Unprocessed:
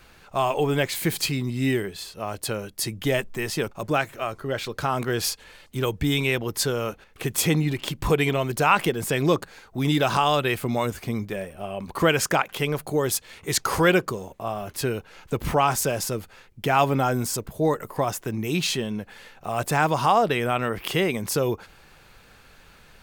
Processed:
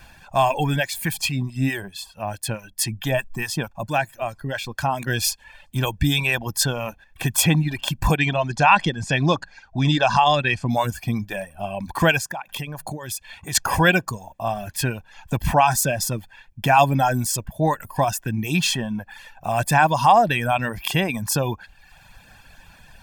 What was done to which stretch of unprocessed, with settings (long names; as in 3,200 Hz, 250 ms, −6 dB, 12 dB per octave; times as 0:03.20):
0:00.76–0:05.07: two-band tremolo in antiphase 4.6 Hz, depth 50%, crossover 970 Hz
0:08.18–0:10.70: low-pass filter 6,500 Hz 24 dB per octave
0:12.18–0:13.55: downward compressor, threshold −30 dBFS
whole clip: notch filter 4,100 Hz, Q 19; reverb reduction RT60 0.82 s; comb filter 1.2 ms, depth 70%; level +3 dB